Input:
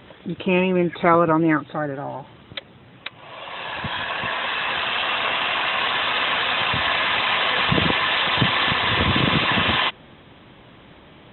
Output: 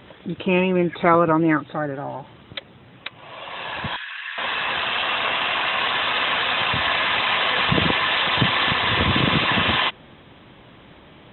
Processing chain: 3.96–4.38 ladder high-pass 1300 Hz, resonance 35%

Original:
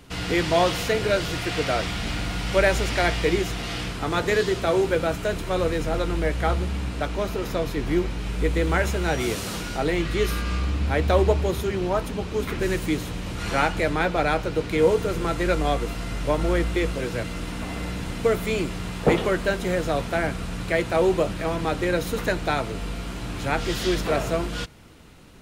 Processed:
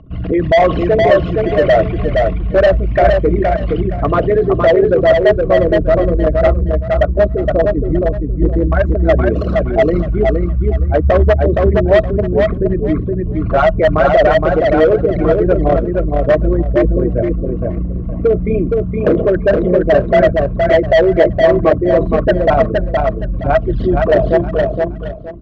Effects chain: formant sharpening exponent 3; in parallel at +2.5 dB: limiter -17 dBFS, peak gain reduction 10 dB; on the sum: small resonant body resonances 640/1100 Hz, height 17 dB, ringing for 50 ms; hard clip -7.5 dBFS, distortion -8 dB; air absorption 150 m; feedback echo 0.468 s, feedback 24%, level -3.5 dB; gain +1.5 dB

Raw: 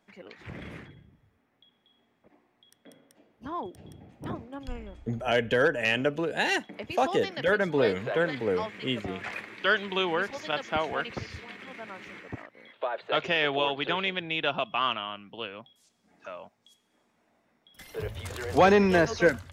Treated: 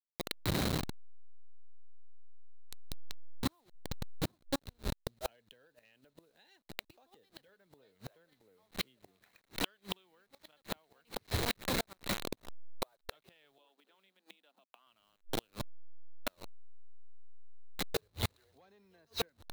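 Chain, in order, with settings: level-crossing sampler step -37 dBFS; compressor 2.5:1, threshold -38 dBFS, peak gain reduction 15 dB; flipped gate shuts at -32 dBFS, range -41 dB; high shelf 8600 Hz +8 dB; 13.58–14.87 rippled Chebyshev high-pass 190 Hz, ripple 3 dB; bell 4000 Hz +12.5 dB 0.27 oct; gain +10 dB

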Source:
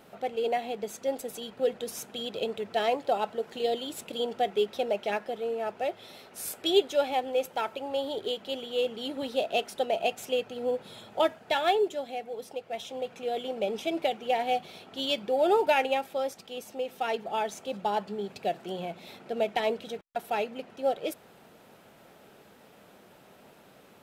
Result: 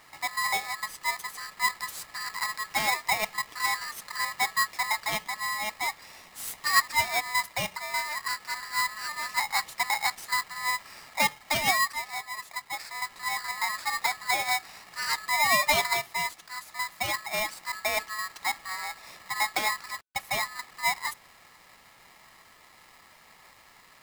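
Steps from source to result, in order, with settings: polarity switched at an audio rate 1500 Hz

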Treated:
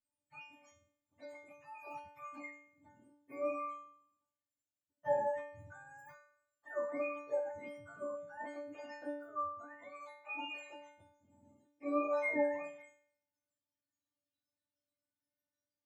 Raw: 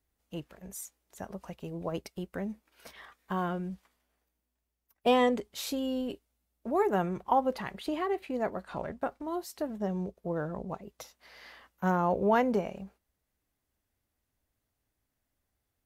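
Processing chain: spectrum mirrored in octaves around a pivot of 650 Hz; metallic resonator 290 Hz, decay 0.71 s, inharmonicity 0.002; gain +10.5 dB

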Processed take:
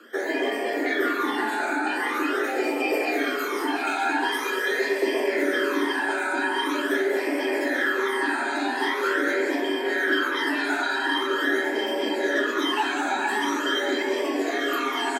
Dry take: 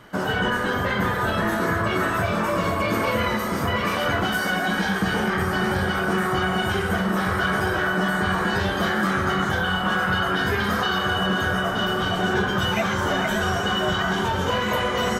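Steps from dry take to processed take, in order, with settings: phaser stages 12, 0.44 Hz, lowest notch 290–1200 Hz; frequency shift +200 Hz; echo 0.196 s -8.5 dB

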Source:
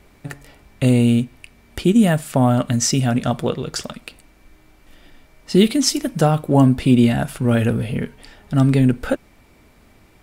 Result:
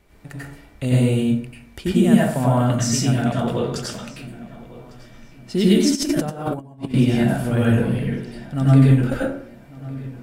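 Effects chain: on a send: darkening echo 1.153 s, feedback 38%, low-pass 4000 Hz, level -19 dB; on the sum: plate-style reverb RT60 0.56 s, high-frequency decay 0.55×, pre-delay 80 ms, DRR -6 dB; 5.95–6.94 negative-ratio compressor -17 dBFS, ratio -0.5; gain -8 dB

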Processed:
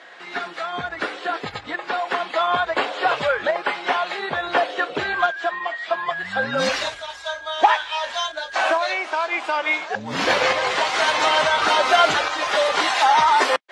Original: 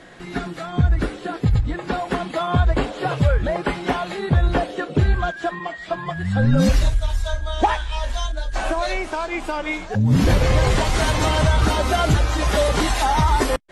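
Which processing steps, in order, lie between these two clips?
LPF 4700 Hz 12 dB/oct; tremolo saw up 0.57 Hz, depth 45%; HPF 720 Hz 12 dB/oct; gain +8.5 dB

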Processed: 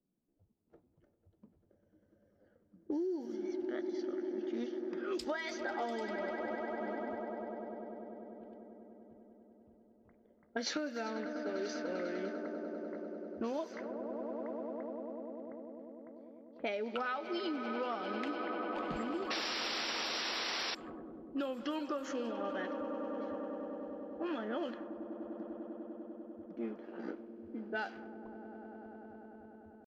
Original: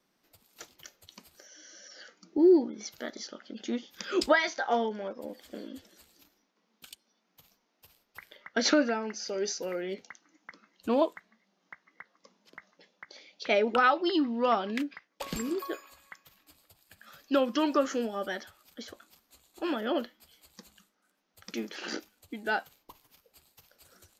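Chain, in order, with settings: tempo 0.81×; swelling echo 99 ms, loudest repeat 8, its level -16 dB; painted sound noise, 19.3–20.75, 350–5800 Hz -26 dBFS; low-pass opened by the level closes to 300 Hz, open at -22 dBFS; compressor 12:1, threshold -30 dBFS, peak gain reduction 14.5 dB; gain -3.5 dB

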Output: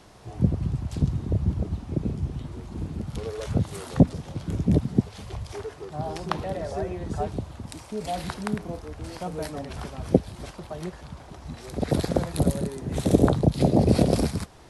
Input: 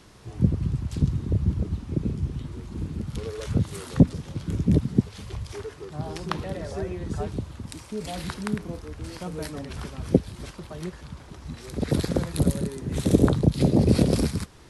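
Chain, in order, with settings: bell 710 Hz +8.5 dB 0.76 oct; gain -1 dB

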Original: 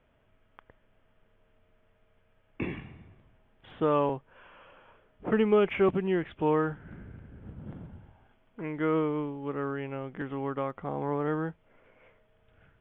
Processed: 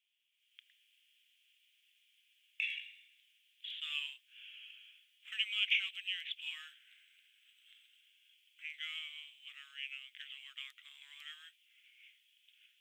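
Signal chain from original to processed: steep high-pass 2800 Hz 36 dB/oct; AGC gain up to 13 dB; gain +1 dB

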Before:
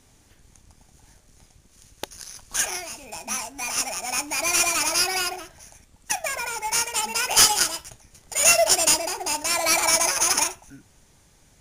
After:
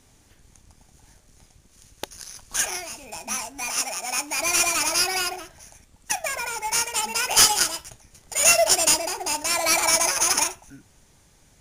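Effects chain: 3.7–4.37 low shelf 160 Hz -10 dB

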